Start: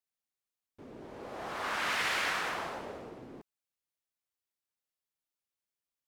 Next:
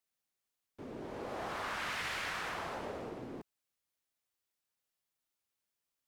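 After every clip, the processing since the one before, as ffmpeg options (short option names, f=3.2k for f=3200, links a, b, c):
-filter_complex "[0:a]acrossover=split=140[a][b];[b]acompressor=threshold=-41dB:ratio=4[c];[a][c]amix=inputs=2:normalize=0,volume=3.5dB"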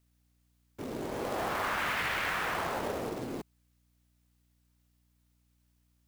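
-filter_complex "[0:a]aeval=exprs='val(0)+0.000141*(sin(2*PI*60*n/s)+sin(2*PI*2*60*n/s)/2+sin(2*PI*3*60*n/s)/3+sin(2*PI*4*60*n/s)/4+sin(2*PI*5*60*n/s)/5)':c=same,acrossover=split=3400[a][b];[b]acompressor=threshold=-58dB:ratio=4:attack=1:release=60[c];[a][c]amix=inputs=2:normalize=0,acrusher=bits=3:mode=log:mix=0:aa=0.000001,volume=7dB"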